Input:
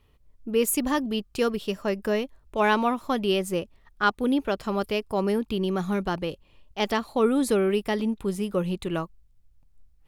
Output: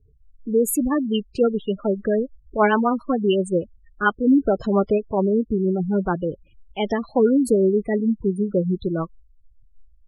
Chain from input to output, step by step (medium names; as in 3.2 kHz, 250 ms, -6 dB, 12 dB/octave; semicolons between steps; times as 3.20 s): rotary cabinet horn 7.5 Hz; 4.27–4.98 s: waveshaping leveller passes 1; spectral gate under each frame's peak -15 dB strong; trim +7 dB